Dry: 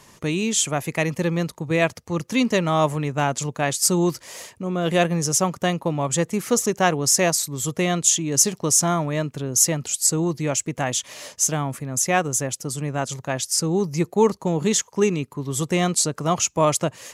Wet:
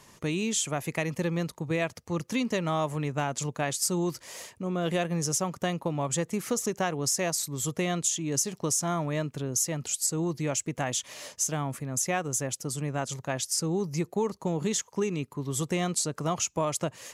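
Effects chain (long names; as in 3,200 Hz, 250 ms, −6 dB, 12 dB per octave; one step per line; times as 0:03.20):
downward compressor 5 to 1, threshold −20 dBFS, peak gain reduction 8 dB
level −4.5 dB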